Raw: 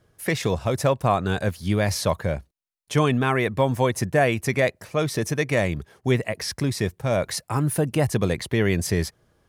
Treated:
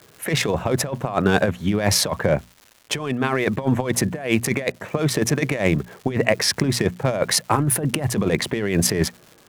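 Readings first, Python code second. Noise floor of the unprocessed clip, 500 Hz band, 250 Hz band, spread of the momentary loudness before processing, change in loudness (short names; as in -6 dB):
-71 dBFS, +0.5 dB, +3.5 dB, 6 LU, +2.5 dB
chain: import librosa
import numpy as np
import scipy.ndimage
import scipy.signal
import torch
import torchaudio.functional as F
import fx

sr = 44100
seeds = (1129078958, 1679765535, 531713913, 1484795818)

y = fx.wiener(x, sr, points=9)
y = scipy.signal.sosfilt(scipy.signal.butter(2, 150.0, 'highpass', fs=sr, output='sos'), y)
y = fx.dmg_crackle(y, sr, seeds[0], per_s=310.0, level_db=-47.0)
y = fx.over_compress(y, sr, threshold_db=-26.0, ratio=-0.5)
y = fx.hum_notches(y, sr, base_hz=60, count=4)
y = F.gain(torch.from_numpy(y), 7.5).numpy()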